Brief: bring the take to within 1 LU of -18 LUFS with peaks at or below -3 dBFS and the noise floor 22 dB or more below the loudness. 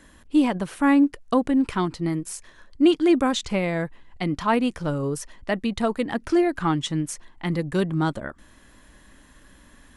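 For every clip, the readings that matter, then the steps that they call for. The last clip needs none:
loudness -24.0 LUFS; peak level -7.5 dBFS; loudness target -18.0 LUFS
-> trim +6 dB; peak limiter -3 dBFS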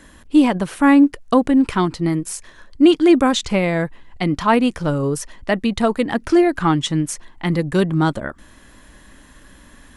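loudness -18.0 LUFS; peak level -3.0 dBFS; noise floor -47 dBFS

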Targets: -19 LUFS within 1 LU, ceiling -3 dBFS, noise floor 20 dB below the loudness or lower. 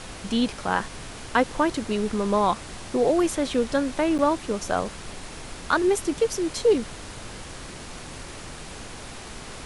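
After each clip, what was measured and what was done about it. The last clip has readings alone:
dropouts 1; longest dropout 8.8 ms; noise floor -40 dBFS; noise floor target -45 dBFS; loudness -24.5 LUFS; peak level -7.5 dBFS; loudness target -19.0 LUFS
-> interpolate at 4.18 s, 8.8 ms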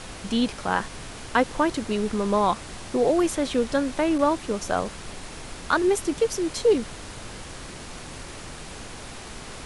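dropouts 0; noise floor -40 dBFS; noise floor target -45 dBFS
-> noise print and reduce 6 dB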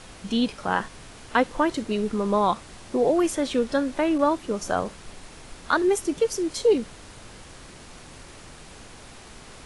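noise floor -46 dBFS; loudness -24.5 LUFS; peak level -7.5 dBFS; loudness target -19.0 LUFS
-> trim +5.5 dB; peak limiter -3 dBFS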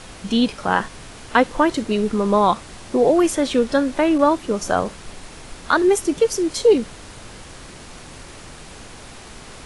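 loudness -19.0 LUFS; peak level -3.0 dBFS; noise floor -40 dBFS

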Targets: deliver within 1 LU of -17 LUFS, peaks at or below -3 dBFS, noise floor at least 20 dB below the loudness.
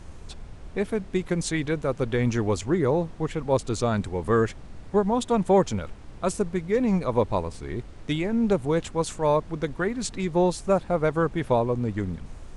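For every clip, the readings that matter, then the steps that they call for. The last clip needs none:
noise floor -43 dBFS; noise floor target -46 dBFS; loudness -26.0 LUFS; peak level -9.5 dBFS; loudness target -17.0 LUFS
-> noise print and reduce 6 dB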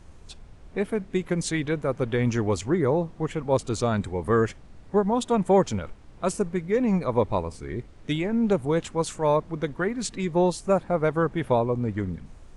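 noise floor -48 dBFS; loudness -25.5 LUFS; peak level -9.5 dBFS; loudness target -17.0 LUFS
-> trim +8.5 dB; peak limiter -3 dBFS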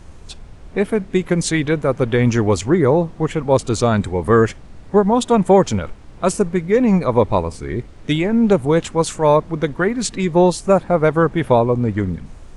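loudness -17.5 LUFS; peak level -3.0 dBFS; noise floor -39 dBFS

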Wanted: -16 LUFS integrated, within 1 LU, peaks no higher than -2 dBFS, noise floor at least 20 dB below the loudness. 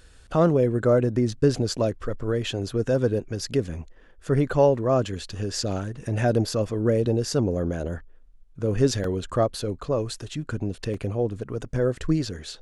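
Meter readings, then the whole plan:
dropouts 2; longest dropout 2.6 ms; loudness -25.0 LUFS; peak level -7.5 dBFS; loudness target -16.0 LUFS
-> interpolate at 9.04/10.94 s, 2.6 ms; trim +9 dB; peak limiter -2 dBFS

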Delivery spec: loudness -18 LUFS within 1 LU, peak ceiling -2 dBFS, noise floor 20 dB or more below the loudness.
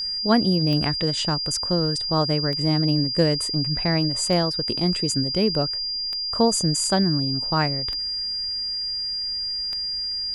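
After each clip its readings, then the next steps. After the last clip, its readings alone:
clicks found 6; steady tone 4.8 kHz; tone level -25 dBFS; loudness -22.0 LUFS; peak level -5.5 dBFS; loudness target -18.0 LUFS
-> de-click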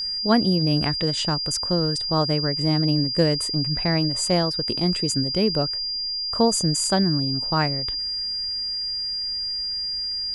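clicks found 0; steady tone 4.8 kHz; tone level -25 dBFS
-> band-stop 4.8 kHz, Q 30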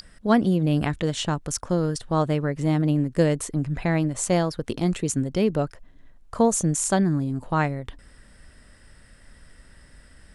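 steady tone not found; loudness -24.0 LUFS; peak level -6.0 dBFS; loudness target -18.0 LUFS
-> trim +6 dB; peak limiter -2 dBFS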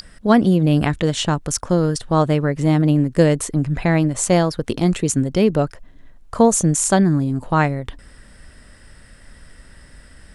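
loudness -18.0 LUFS; peak level -2.0 dBFS; noise floor -47 dBFS

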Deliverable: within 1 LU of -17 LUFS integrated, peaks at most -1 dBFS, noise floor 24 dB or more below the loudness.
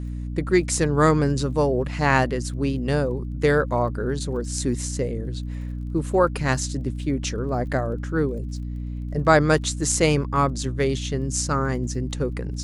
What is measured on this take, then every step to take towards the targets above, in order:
tick rate 25 per s; hum 60 Hz; highest harmonic 300 Hz; hum level -27 dBFS; loudness -23.5 LUFS; peak level -2.5 dBFS; loudness target -17.0 LUFS
-> de-click; hum notches 60/120/180/240/300 Hz; trim +6.5 dB; peak limiter -1 dBFS

